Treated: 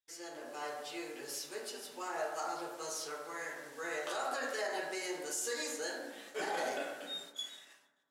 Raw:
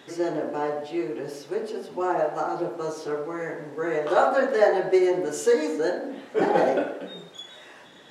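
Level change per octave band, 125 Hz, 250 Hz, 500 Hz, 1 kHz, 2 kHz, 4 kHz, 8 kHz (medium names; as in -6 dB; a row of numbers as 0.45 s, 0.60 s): -23.0 dB, -20.0 dB, -18.0 dB, -13.5 dB, -7.5 dB, -1.0 dB, +1.0 dB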